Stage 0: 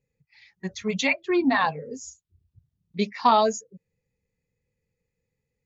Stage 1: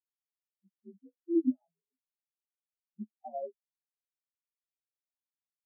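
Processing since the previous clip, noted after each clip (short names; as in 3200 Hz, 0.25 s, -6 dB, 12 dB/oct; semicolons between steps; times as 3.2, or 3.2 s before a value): inharmonic rescaling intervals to 83%; treble ducked by the level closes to 630 Hz, closed at -23.5 dBFS; spectral expander 4:1; gain -6.5 dB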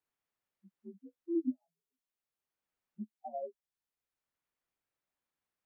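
three-band squash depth 40%; gain -1.5 dB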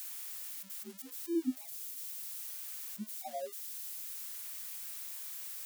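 switching spikes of -36 dBFS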